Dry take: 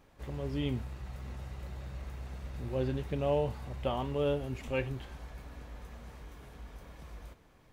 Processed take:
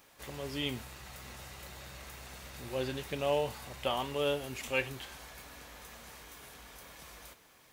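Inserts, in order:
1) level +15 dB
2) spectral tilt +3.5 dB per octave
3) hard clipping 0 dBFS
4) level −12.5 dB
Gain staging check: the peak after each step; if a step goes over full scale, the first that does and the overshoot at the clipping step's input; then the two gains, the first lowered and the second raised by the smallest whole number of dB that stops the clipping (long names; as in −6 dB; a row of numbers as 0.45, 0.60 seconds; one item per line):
−4.0, −3.0, −3.0, −15.5 dBFS
no step passes full scale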